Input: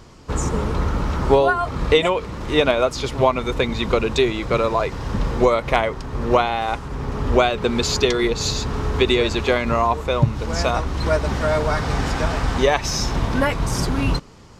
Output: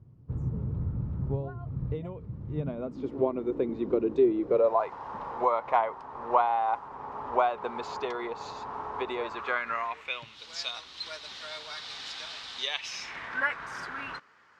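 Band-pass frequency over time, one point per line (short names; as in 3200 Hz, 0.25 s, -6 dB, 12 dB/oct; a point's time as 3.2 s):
band-pass, Q 3.3
2.5 s 120 Hz
3.14 s 330 Hz
4.42 s 330 Hz
4.83 s 910 Hz
9.21 s 910 Hz
10.43 s 3800 Hz
12.62 s 3800 Hz
13.38 s 1600 Hz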